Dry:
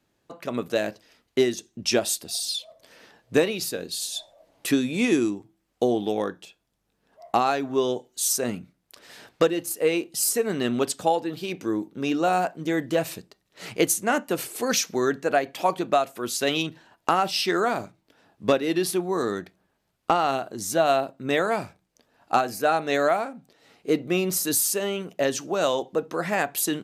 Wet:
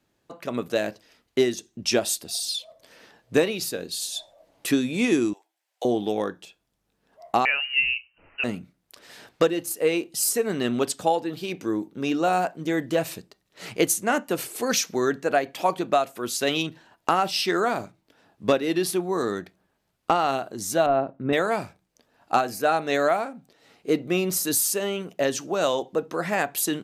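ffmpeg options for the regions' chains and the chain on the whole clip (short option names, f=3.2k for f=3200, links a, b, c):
-filter_complex "[0:a]asettb=1/sr,asplit=3[a][b][c];[a]atrim=end=5.334[d];[b]atrim=start=5.33:end=5.85,asetpts=PTS-STARTPTS,afade=t=in:d=0.004:c=qsin,afade=t=out:st=0.516:d=0.004:c=qsin,highpass=f=660:w=0.5412,highpass=f=660:w=1.3066,equalizer=f=1.2k:t=o:w=0.31:g=-10[e];[c]atrim=start=5.846[f];[d][e]acrossfade=d=0.004:c1=hsin:c2=qsin[g];[g][f]acrossfade=d=0.004:c1=qsin:c2=hsin,asettb=1/sr,asplit=3[h][i][j];[h]atrim=end=7.454[k];[i]atrim=start=7.45:end=8.44,asetpts=PTS-STARTPTS,afade=t=in:d=0.004:c=qsin,afade=t=out:st=0.986:d=0.004:c=qsin,lowpass=f=2.6k:t=q:w=0.5098,lowpass=f=2.6k:t=q:w=0.6013,lowpass=f=2.6k:t=q:w=0.9,lowpass=f=2.6k:t=q:w=2.563,afreqshift=-3100,asubboost=boost=10.5:cutoff=85[l];[j]atrim=start=8.436[m];[k][l]acrossfade=d=0.004:c1=hsin:c2=qsin[n];[n][m]acrossfade=d=0.004:c1=qsin:c2=hsin,asettb=1/sr,asplit=3[o][p][q];[o]atrim=end=20.864[r];[p]atrim=start=20.86:end=21.33,asetpts=PTS-STARTPTS,afade=t=in:d=0.004:c=qsin,afade=t=out:st=0.466:d=0.004:c=qsin,deesser=0.85,lowpass=1.8k,lowshelf=f=340:g=5.5[s];[q]atrim=start=21.326[t];[r][s]acrossfade=d=0.004:c1=hsin:c2=qsin[u];[u][t]acrossfade=d=0.004:c1=qsin:c2=hsin"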